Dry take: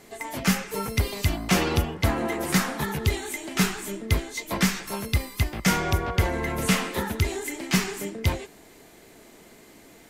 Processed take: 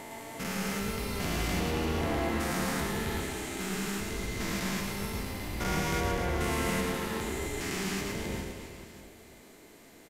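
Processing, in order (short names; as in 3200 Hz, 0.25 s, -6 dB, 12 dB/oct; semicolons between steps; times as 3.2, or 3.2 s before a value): stepped spectrum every 0.4 s; reverse bouncing-ball echo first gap 0.11 s, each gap 1.3×, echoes 5; gain -4 dB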